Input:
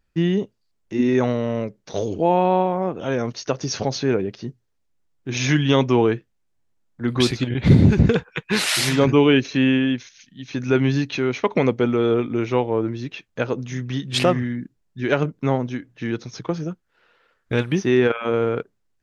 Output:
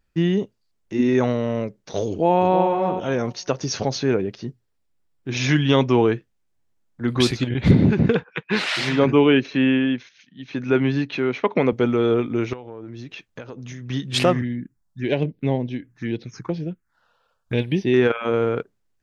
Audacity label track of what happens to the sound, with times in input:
2.080000	2.660000	delay throw 330 ms, feedback 15%, level −7 dB
4.440000	5.950000	notch filter 6,300 Hz
7.710000	11.730000	band-pass filter 140–3,500 Hz
12.530000	13.900000	downward compressor 16 to 1, threshold −31 dBFS
14.410000	17.940000	phaser swept by the level lowest notch 330 Hz, up to 1,300 Hz, full sweep at −22 dBFS

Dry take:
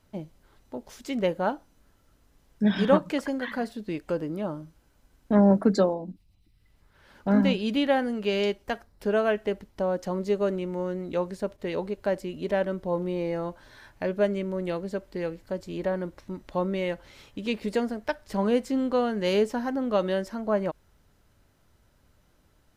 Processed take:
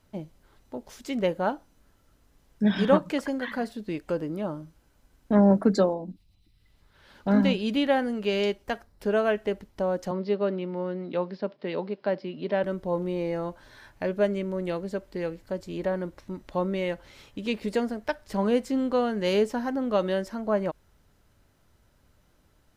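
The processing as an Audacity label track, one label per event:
6.100000	7.470000	parametric band 3,800 Hz +5.5 dB
10.110000	12.640000	Chebyshev band-pass filter 140–5,100 Hz, order 5

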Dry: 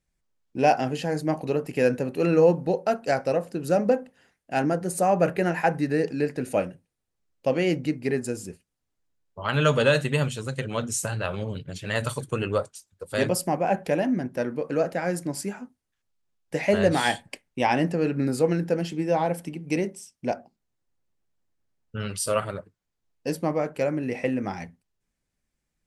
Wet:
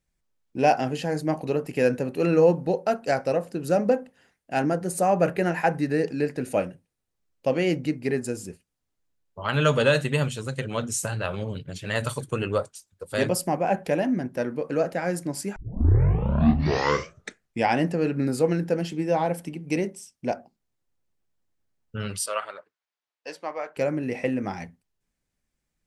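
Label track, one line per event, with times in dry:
15.560000	15.560000	tape start 2.22 s
22.260000	23.770000	band-pass filter 770–4,900 Hz

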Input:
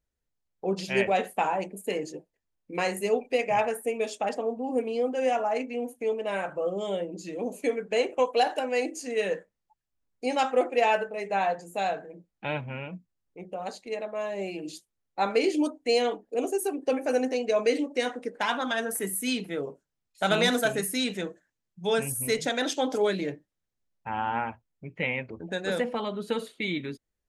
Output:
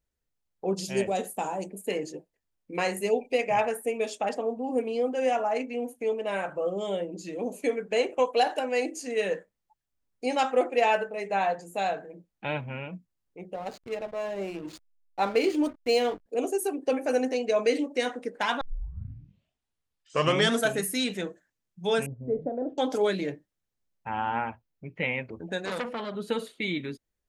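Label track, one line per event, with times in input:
0.740000	1.700000	drawn EQ curve 320 Hz 0 dB, 2,200 Hz −11 dB, 7,200 Hz +8 dB
3.110000	3.330000	time-frequency box erased 1,000–2,100 Hz
13.540000	16.260000	slack as between gear wheels play −37.5 dBFS
18.610000	18.610000	tape start 2.06 s
22.060000	22.780000	Chebyshev low-pass filter 620 Hz, order 3
24.350000	25.040000	parametric band 8,200 Hz −6 dB
25.650000	26.150000	saturating transformer saturates under 2,000 Hz

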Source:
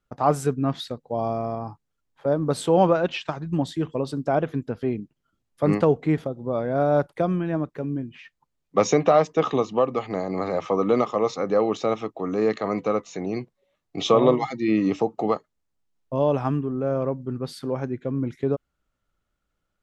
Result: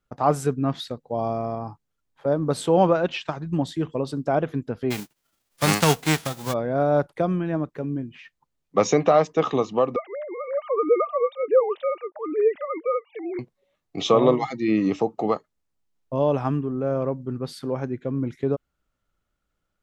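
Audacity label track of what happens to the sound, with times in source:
4.900000	6.520000	spectral envelope flattened exponent 0.3
9.960000	13.390000	three sine waves on the formant tracks

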